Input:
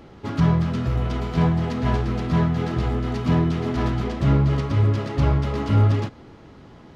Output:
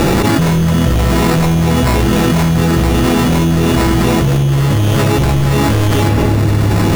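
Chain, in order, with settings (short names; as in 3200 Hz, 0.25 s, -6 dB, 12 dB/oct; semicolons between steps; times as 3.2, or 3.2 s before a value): elliptic low-pass 4800 Hz; sample-and-hold 14×; in parallel at -6 dB: sine folder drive 9 dB, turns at -10 dBFS; on the sum: shoebox room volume 1500 m³, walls mixed, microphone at 0.77 m; fast leveller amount 100%; gain -2.5 dB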